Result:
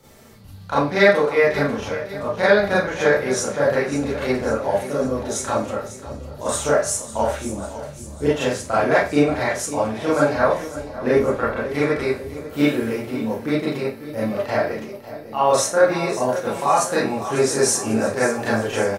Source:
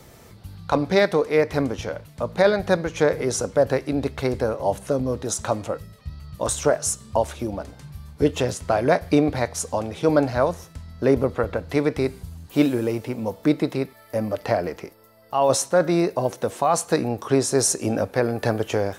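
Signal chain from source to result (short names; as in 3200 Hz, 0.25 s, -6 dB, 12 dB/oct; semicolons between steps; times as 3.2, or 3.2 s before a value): feedback echo 0.548 s, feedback 59%, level -13 dB; dynamic EQ 1700 Hz, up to +7 dB, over -37 dBFS, Q 0.84; Schroeder reverb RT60 0.31 s, combs from 28 ms, DRR -8.5 dB; gain -8.5 dB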